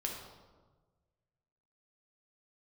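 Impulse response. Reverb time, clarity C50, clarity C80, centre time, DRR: 1.3 s, 3.0 dB, 5.5 dB, 50 ms, −0.5 dB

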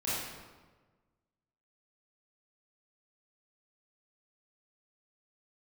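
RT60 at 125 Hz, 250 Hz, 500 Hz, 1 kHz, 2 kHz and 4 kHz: 1.7, 1.5, 1.4, 1.3, 1.1, 0.90 seconds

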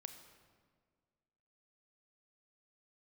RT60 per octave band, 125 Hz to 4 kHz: 1.9, 2.0, 1.9, 1.6, 1.4, 1.1 seconds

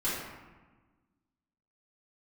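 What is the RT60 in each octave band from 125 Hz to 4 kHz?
1.7, 1.8, 1.3, 1.3, 1.1, 0.75 seconds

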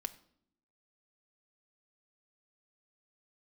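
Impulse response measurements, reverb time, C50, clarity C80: 0.65 s, 17.0 dB, 20.0 dB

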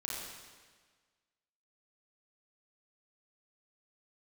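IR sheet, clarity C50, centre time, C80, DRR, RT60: −2.0 dB, 97 ms, 1.0 dB, −5.5 dB, 1.5 s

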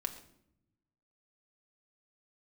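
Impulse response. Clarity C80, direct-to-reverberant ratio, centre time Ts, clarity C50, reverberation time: 13.5 dB, 4.0 dB, 10 ms, 11.5 dB, 0.70 s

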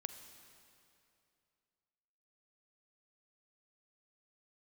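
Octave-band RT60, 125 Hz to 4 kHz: 2.7, 2.6, 2.7, 2.6, 2.4, 2.3 seconds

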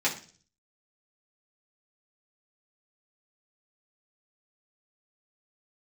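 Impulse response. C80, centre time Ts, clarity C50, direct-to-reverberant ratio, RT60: 15.5 dB, 17 ms, 11.0 dB, −6.5 dB, 0.40 s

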